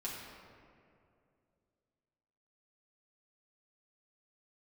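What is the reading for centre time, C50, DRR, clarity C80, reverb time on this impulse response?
95 ms, 1.0 dB, -6.0 dB, 2.5 dB, 2.5 s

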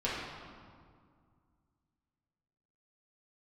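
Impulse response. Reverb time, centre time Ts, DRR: 2.1 s, 104 ms, -9.0 dB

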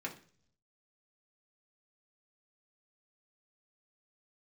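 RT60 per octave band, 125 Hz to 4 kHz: 1.0 s, 0.70 s, 0.55 s, 0.40 s, 0.45 s, 0.60 s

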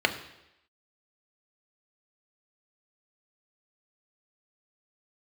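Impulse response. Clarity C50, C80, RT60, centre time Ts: 11.5 dB, 13.5 dB, 0.85 s, 12 ms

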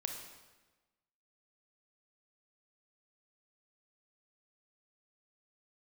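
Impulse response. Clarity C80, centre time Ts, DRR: 6.5 dB, 40 ms, 3.0 dB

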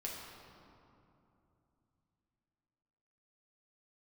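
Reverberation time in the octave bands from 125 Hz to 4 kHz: 4.0 s, 3.8 s, 2.9 s, 2.8 s, 2.0 s, 1.5 s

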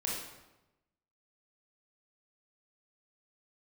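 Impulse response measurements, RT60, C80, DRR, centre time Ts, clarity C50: 1.0 s, 4.0 dB, -4.0 dB, 63 ms, 0.5 dB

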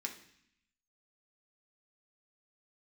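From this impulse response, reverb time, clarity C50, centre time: 0.65 s, 10.0 dB, 15 ms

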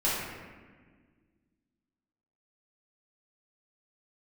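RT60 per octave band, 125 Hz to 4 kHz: 2.2 s, 2.5 s, 1.7 s, 1.4 s, 1.5 s, 0.95 s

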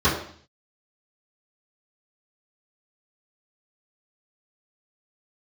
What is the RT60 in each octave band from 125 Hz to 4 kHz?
0.70 s, 0.60 s, 0.50 s, 0.55 s, 0.55 s, 0.60 s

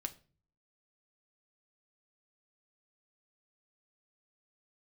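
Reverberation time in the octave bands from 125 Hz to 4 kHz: 0.75 s, 0.60 s, 0.45 s, 0.35 s, 0.35 s, 0.30 s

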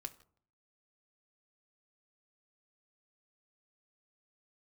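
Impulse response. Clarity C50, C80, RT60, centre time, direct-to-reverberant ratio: 17.0 dB, 20.0 dB, no single decay rate, 5 ms, 6.0 dB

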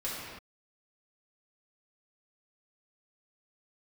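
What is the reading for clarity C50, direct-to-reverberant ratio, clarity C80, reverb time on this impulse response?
-1.5 dB, -9.5 dB, 0.5 dB, no single decay rate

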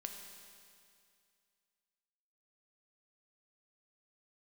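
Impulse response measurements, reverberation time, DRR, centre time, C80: 2.3 s, 3.0 dB, 60 ms, 5.5 dB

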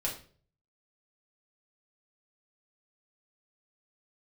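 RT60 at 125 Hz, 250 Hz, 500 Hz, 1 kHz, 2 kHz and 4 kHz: 0.75 s, 0.50 s, 0.50 s, 0.40 s, 0.40 s, 0.35 s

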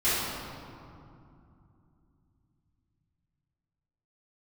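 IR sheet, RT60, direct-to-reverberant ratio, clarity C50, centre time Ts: 2.6 s, -15.0 dB, -3.5 dB, 152 ms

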